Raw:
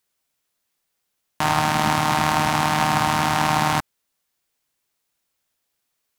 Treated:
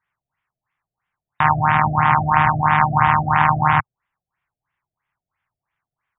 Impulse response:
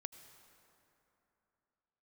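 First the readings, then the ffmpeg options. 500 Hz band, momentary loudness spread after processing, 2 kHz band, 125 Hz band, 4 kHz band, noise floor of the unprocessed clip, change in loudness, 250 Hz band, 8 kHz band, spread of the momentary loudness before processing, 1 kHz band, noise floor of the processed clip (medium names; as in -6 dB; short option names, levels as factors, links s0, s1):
-3.5 dB, 3 LU, +4.0 dB, +5.5 dB, -10.5 dB, -76 dBFS, +3.5 dB, 0.0 dB, under -40 dB, 3 LU, +5.0 dB, under -85 dBFS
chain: -af "equalizer=f=125:t=o:w=1:g=9,equalizer=f=250:t=o:w=1:g=-9,equalizer=f=500:t=o:w=1:g=-11,equalizer=f=1000:t=o:w=1:g=8,equalizer=f=2000:t=o:w=1:g=7,equalizer=f=4000:t=o:w=1:g=-11,afftfilt=real='re*lt(b*sr/1024,700*pow(3800/700,0.5+0.5*sin(2*PI*3*pts/sr)))':imag='im*lt(b*sr/1024,700*pow(3800/700,0.5+0.5*sin(2*PI*3*pts/sr)))':win_size=1024:overlap=0.75,volume=1.26"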